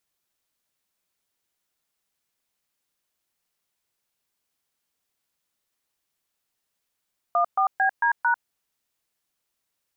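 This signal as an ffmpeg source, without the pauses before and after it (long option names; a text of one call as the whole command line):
ffmpeg -f lavfi -i "aevalsrc='0.0944*clip(min(mod(t,0.224),0.096-mod(t,0.224))/0.002,0,1)*(eq(floor(t/0.224),0)*(sin(2*PI*697*mod(t,0.224))+sin(2*PI*1209*mod(t,0.224)))+eq(floor(t/0.224),1)*(sin(2*PI*770*mod(t,0.224))+sin(2*PI*1209*mod(t,0.224)))+eq(floor(t/0.224),2)*(sin(2*PI*770*mod(t,0.224))+sin(2*PI*1633*mod(t,0.224)))+eq(floor(t/0.224),3)*(sin(2*PI*941*mod(t,0.224))+sin(2*PI*1633*mod(t,0.224)))+eq(floor(t/0.224),4)*(sin(2*PI*941*mod(t,0.224))+sin(2*PI*1477*mod(t,0.224))))':duration=1.12:sample_rate=44100" out.wav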